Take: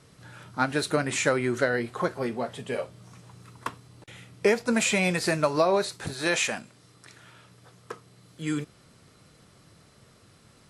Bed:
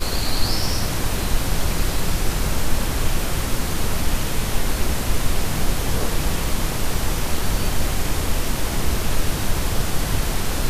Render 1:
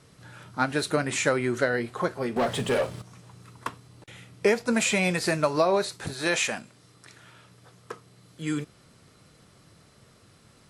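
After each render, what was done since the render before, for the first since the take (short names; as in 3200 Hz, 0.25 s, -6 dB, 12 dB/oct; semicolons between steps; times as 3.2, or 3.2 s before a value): 2.36–3.02 sample leveller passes 3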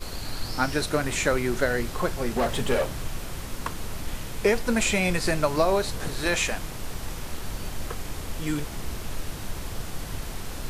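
add bed -12 dB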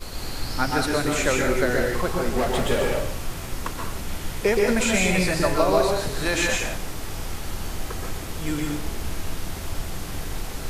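plate-style reverb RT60 0.58 s, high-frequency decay 0.95×, pre-delay 0.11 s, DRR 0 dB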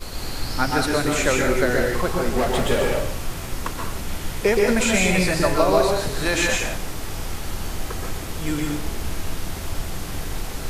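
gain +2 dB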